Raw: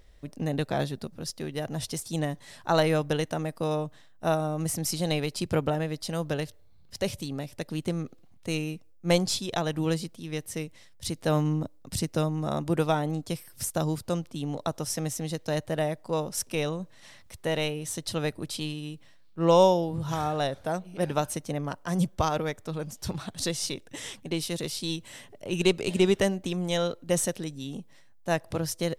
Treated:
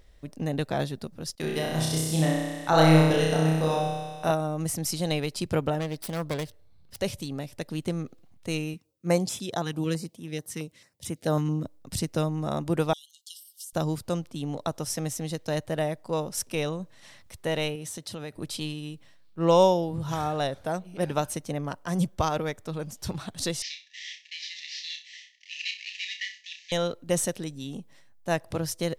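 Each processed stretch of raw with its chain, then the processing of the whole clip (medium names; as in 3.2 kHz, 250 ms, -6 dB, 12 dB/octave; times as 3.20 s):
1.35–4.31 s: gate -45 dBFS, range -20 dB + flutter echo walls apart 5.4 m, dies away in 1.2 s + tape noise reduction on one side only encoder only
5.80–6.97 s: self-modulated delay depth 0.32 ms + band-stop 6.9 kHz, Q 14
8.74–11.65 s: high-pass 100 Hz + step-sequenced notch 9.1 Hz 610–4400 Hz
12.93–13.73 s: brick-wall FIR high-pass 2.8 kHz + compression 10:1, threshold -37 dBFS
17.75–18.36 s: high-pass 91 Hz + compression, threshold -33 dBFS
23.62–26.72 s: CVSD coder 32 kbps + brick-wall FIR high-pass 1.7 kHz + flutter echo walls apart 5.4 m, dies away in 0.31 s
whole clip: none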